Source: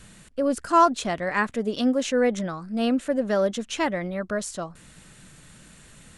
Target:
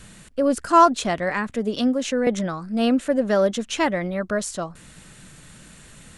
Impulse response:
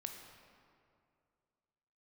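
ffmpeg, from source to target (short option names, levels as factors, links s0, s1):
-filter_complex "[0:a]asettb=1/sr,asplit=3[s0][s1][s2];[s0]atrim=end=1.304[s3];[s1]atrim=start=1.3:end=2.27,asetpts=PTS-STARTPTS,afade=t=in:d=0.004:c=qsin,afade=t=out:st=0.966:d=0.004:c=qsin,acrossover=split=240[s4][s5];[s5]acompressor=threshold=0.0501:ratio=5[s6];[s4][s6]amix=inputs=2:normalize=0[s7];[s2]atrim=start=2.266[s8];[s3][s7]acrossfade=d=0.004:c1=hsin:c2=qsin[s9];[s9][s8]acrossfade=d=0.004:c1=qsin:c2=hsin,volume=1.5"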